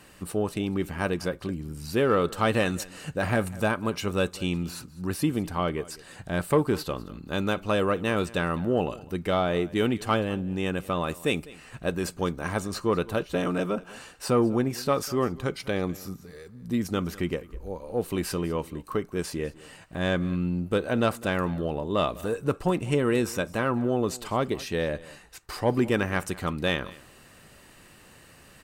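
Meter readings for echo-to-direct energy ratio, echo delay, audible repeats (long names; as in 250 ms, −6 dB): −20.5 dB, 201 ms, 1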